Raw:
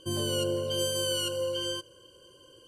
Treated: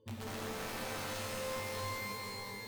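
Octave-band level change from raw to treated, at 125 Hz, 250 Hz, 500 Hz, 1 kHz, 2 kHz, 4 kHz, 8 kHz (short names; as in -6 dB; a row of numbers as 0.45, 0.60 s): -8.0, -9.0, -11.5, +3.5, +2.0, -14.0, -10.0 dB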